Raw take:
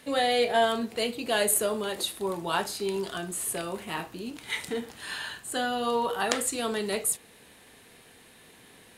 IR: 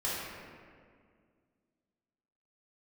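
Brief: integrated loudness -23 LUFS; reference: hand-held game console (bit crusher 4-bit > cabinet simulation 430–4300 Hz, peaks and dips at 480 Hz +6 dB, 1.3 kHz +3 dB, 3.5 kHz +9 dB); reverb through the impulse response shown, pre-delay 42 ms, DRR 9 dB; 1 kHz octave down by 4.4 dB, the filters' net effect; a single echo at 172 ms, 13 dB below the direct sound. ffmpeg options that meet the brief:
-filter_complex "[0:a]equalizer=f=1000:t=o:g=-7.5,aecho=1:1:172:0.224,asplit=2[s0][s1];[1:a]atrim=start_sample=2205,adelay=42[s2];[s1][s2]afir=irnorm=-1:irlink=0,volume=0.158[s3];[s0][s3]amix=inputs=2:normalize=0,acrusher=bits=3:mix=0:aa=0.000001,highpass=430,equalizer=f=480:t=q:w=4:g=6,equalizer=f=1300:t=q:w=4:g=3,equalizer=f=3500:t=q:w=4:g=9,lowpass=f=4300:w=0.5412,lowpass=f=4300:w=1.3066,volume=1.78"

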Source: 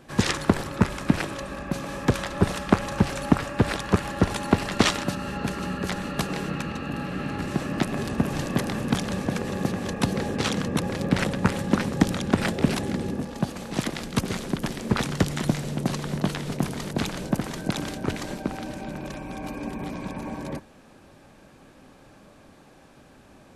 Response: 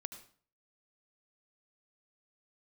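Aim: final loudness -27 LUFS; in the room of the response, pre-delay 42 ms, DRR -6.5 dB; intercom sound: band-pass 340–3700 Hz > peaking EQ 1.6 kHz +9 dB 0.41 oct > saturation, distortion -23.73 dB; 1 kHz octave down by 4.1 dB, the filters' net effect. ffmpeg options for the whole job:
-filter_complex "[0:a]equalizer=f=1000:t=o:g=-7.5,asplit=2[s0][s1];[1:a]atrim=start_sample=2205,adelay=42[s2];[s1][s2]afir=irnorm=-1:irlink=0,volume=2.99[s3];[s0][s3]amix=inputs=2:normalize=0,highpass=340,lowpass=3700,equalizer=f=1600:t=o:w=0.41:g=9,asoftclip=threshold=0.668,volume=0.708"

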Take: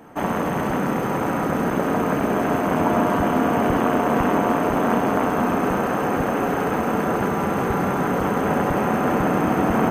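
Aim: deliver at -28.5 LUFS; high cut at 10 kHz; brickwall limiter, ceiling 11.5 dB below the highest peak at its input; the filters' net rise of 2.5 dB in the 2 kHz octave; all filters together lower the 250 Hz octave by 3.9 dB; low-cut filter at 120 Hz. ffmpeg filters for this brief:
-af "highpass=120,lowpass=10000,equalizer=f=250:t=o:g=-4.5,equalizer=f=2000:t=o:g=3.5,volume=0.708,alimiter=limit=0.112:level=0:latency=1"

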